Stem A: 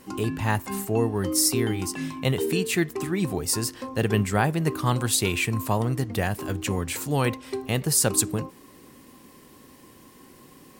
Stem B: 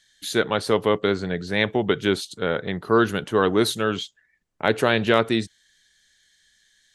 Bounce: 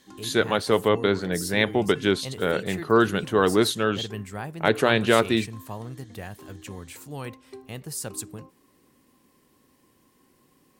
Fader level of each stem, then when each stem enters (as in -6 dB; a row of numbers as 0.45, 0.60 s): -12.0, -0.5 dB; 0.00, 0.00 s